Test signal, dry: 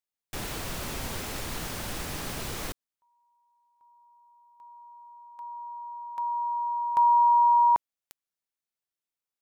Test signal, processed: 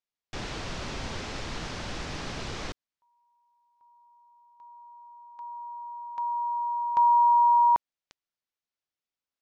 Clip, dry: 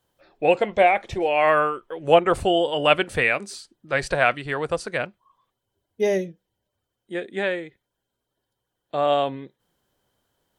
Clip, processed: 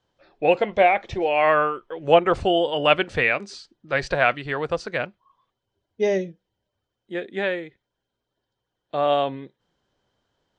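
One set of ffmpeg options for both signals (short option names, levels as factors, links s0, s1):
-af "lowpass=f=6100:w=0.5412,lowpass=f=6100:w=1.3066"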